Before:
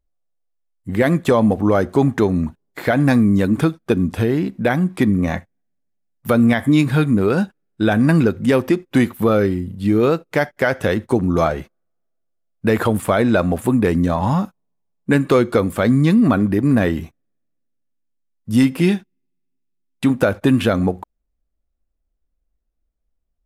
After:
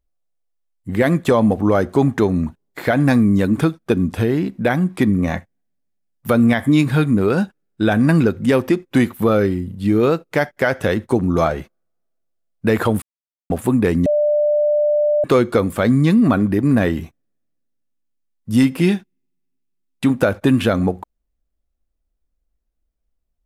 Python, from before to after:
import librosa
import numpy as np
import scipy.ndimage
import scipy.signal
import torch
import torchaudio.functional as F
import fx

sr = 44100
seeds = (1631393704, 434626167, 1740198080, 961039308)

y = fx.edit(x, sr, fx.silence(start_s=13.02, length_s=0.48),
    fx.bleep(start_s=14.06, length_s=1.18, hz=594.0, db=-13.0), tone=tone)